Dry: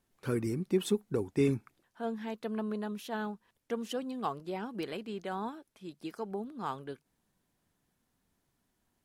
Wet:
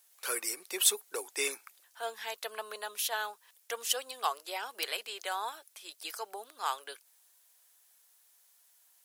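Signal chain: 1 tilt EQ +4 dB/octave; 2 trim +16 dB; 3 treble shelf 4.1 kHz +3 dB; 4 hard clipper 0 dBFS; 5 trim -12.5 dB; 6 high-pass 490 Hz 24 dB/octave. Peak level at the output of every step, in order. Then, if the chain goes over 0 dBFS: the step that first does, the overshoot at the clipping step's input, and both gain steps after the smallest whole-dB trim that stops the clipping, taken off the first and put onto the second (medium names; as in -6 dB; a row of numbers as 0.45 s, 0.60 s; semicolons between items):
-14.0 dBFS, +2.0 dBFS, +5.0 dBFS, 0.0 dBFS, -12.5 dBFS, -11.5 dBFS; step 2, 5.0 dB; step 2 +11 dB, step 5 -7.5 dB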